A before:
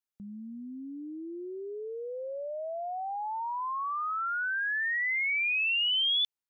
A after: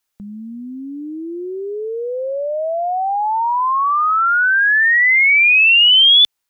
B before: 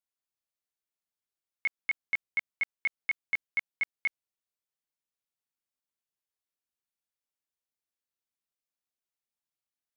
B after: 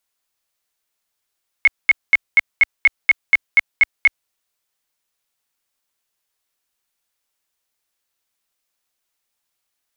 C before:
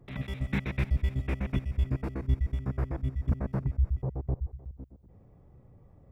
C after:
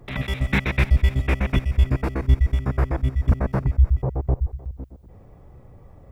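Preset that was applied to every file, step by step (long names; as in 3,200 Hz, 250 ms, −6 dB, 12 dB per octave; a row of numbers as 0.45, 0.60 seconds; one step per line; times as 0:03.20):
parametric band 170 Hz −7 dB 2.7 octaves
normalise the peak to −6 dBFS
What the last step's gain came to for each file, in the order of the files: +17.5, +16.0, +13.5 decibels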